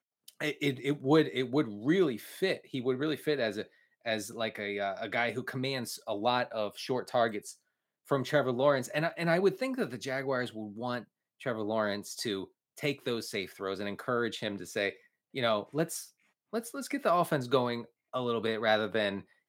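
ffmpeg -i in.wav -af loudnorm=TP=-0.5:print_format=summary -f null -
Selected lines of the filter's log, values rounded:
Input Integrated:    -32.1 LUFS
Input True Peak:     -11.6 dBTP
Input LRA:             4.1 LU
Input Threshold:     -42.3 LUFS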